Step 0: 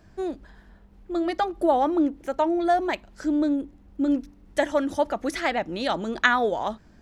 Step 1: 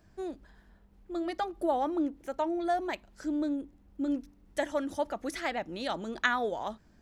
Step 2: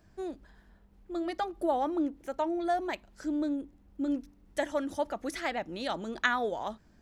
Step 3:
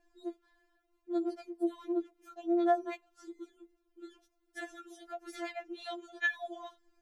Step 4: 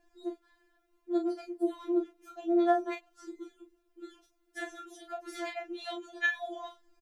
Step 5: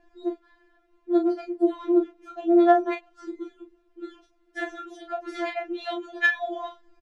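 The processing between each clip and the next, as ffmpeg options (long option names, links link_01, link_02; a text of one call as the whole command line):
ffmpeg -i in.wav -af "highshelf=frequency=7800:gain=6,volume=-8dB" out.wav
ffmpeg -i in.wav -af anull out.wav
ffmpeg -i in.wav -af "afftfilt=real='re*4*eq(mod(b,16),0)':imag='im*4*eq(mod(b,16),0)':win_size=2048:overlap=0.75,volume=-5.5dB" out.wav
ffmpeg -i in.wav -filter_complex "[0:a]asplit=2[link_01][link_02];[link_02]adelay=34,volume=-6dB[link_03];[link_01][link_03]amix=inputs=2:normalize=0,volume=2.5dB" out.wav
ffmpeg -i in.wav -af "adynamicsmooth=sensitivity=1:basefreq=4100,volume=8.5dB" out.wav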